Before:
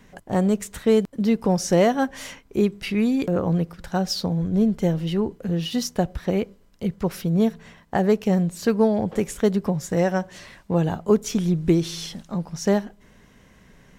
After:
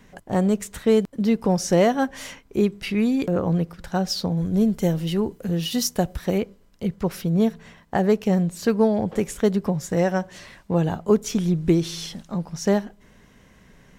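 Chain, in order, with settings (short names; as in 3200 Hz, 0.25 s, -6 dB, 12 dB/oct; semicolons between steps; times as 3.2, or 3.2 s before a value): 4.37–6.38 high shelf 6600 Hz +11.5 dB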